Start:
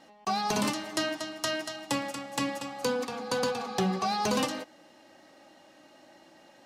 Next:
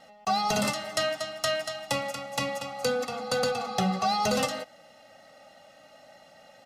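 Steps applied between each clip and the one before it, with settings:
comb filter 1.5 ms, depth 88%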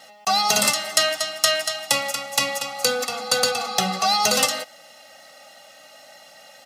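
spectral tilt +3 dB per octave
level +5.5 dB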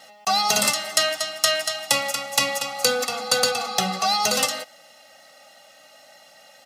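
speech leveller 2 s
level −1 dB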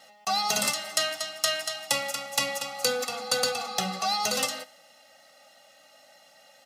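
convolution reverb, pre-delay 3 ms, DRR 14.5 dB
level −6 dB

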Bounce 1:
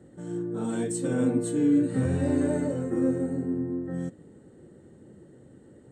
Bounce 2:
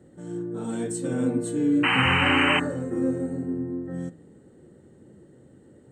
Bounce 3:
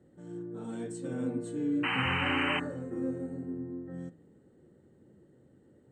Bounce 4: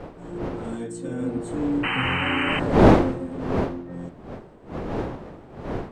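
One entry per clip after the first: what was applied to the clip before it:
sound drawn into the spectrogram noise, 0:01.83–0:02.60, 740–3,100 Hz −22 dBFS; hum removal 55.58 Hz, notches 33
high-frequency loss of the air 53 metres; level −8.5 dB
wind on the microphone 510 Hz −31 dBFS; level +5.5 dB

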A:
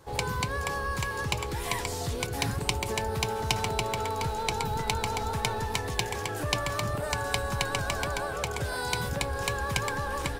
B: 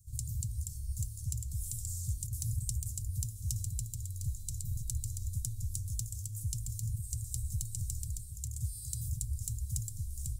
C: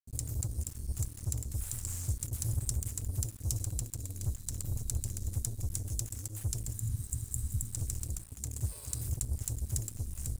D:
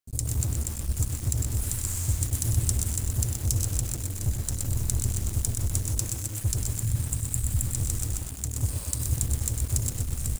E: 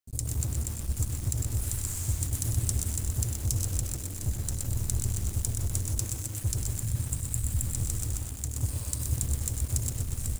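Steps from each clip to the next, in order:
elliptic band-stop filter 110–7,300 Hz, stop band 80 dB
dead-zone distortion −45.5 dBFS; healed spectral selection 0:06.75–0:07.67, 280–6,700 Hz after; level +3.5 dB
on a send: single-tap delay 100 ms −9.5 dB; on the sum: feedback echo at a low word length 124 ms, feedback 55%, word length 7 bits, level −5.5 dB; level +7 dB
delay that swaps between a low-pass and a high-pass 178 ms, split 1,200 Hz, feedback 61%, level −10.5 dB; level −3 dB

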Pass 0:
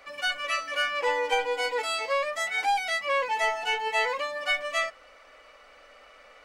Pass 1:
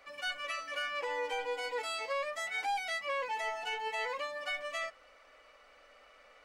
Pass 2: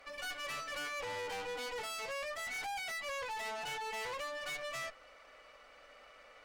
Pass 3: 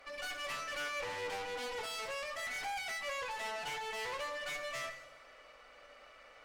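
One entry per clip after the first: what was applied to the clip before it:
brickwall limiter −20 dBFS, peak gain reduction 6 dB; level −7 dB
tube saturation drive 44 dB, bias 0.7; level +5.5 dB
dense smooth reverb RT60 1.2 s, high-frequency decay 0.9×, DRR 7.5 dB; highs frequency-modulated by the lows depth 0.16 ms

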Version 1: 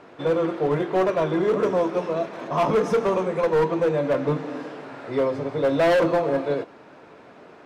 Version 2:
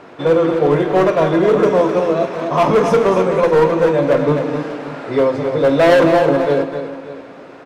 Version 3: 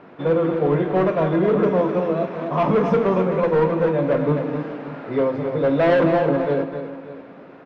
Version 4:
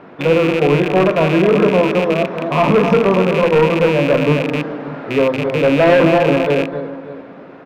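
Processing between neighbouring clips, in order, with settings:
on a send: multi-tap delay 49/259/587 ms −13/−8/−16 dB; on the sum: spring reverb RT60 3.2 s, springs 51 ms, chirp 75 ms, DRR 17 dB; level +7.5 dB
low-pass filter 3,000 Hz 12 dB per octave; parametric band 190 Hz +7 dB 0.85 octaves; level −6.5 dB
loose part that buzzes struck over −29 dBFS, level −18 dBFS; level +5.5 dB

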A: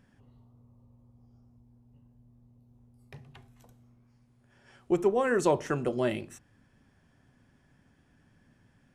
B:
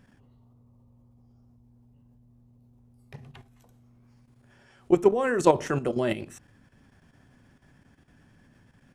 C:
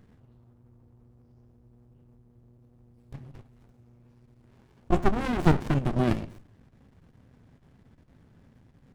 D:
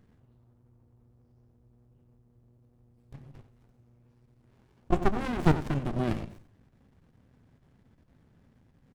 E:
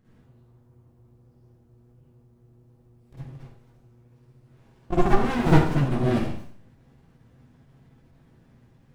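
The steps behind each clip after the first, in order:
output level in coarse steps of 11 dB; level +8 dB
in parallel at −2 dB: brickwall limiter −14.5 dBFS, peak gain reduction 9.5 dB; on the sum: flanger 1.4 Hz, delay 8.3 ms, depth 8.6 ms, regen −70%; windowed peak hold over 65 samples; level +2 dB
in parallel at −2 dB: output level in coarse steps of 18 dB; on the sum: single-tap delay 90 ms −13.5 dB; level −6 dB
convolution reverb RT60 0.45 s, pre-delay 47 ms, DRR −9.5 dB; level −3.5 dB

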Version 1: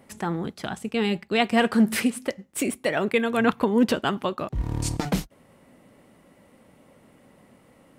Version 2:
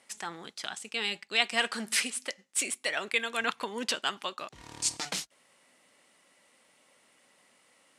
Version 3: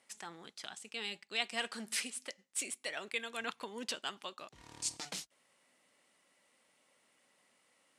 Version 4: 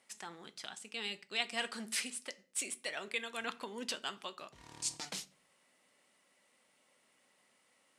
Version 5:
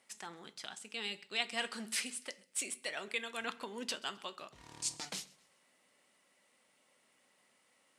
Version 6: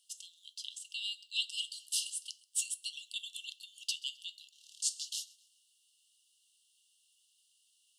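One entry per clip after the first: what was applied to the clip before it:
meter weighting curve ITU-R 468; level −7.5 dB
dynamic equaliser 1,500 Hz, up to −3 dB, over −43 dBFS, Q 0.73; level −7.5 dB
convolution reverb RT60 0.40 s, pre-delay 5 ms, DRR 13 dB
feedback echo with a high-pass in the loop 131 ms, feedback 39%, level −23 dB
linear-phase brick-wall high-pass 2,700 Hz; level +4 dB

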